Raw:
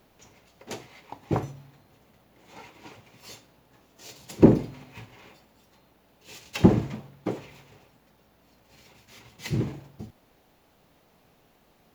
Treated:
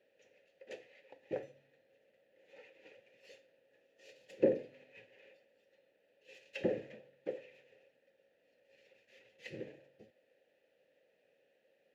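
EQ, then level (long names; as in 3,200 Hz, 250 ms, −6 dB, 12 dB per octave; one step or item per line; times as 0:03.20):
formant filter e
high-shelf EQ 4,700 Hz +5.5 dB
notch filter 690 Hz, Q 20
0.0 dB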